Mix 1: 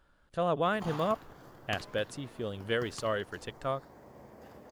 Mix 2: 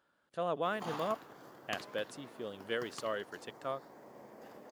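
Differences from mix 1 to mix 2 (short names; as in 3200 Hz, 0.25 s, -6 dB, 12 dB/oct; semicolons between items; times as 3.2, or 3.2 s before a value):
speech -5.0 dB; master: add HPF 210 Hz 12 dB/oct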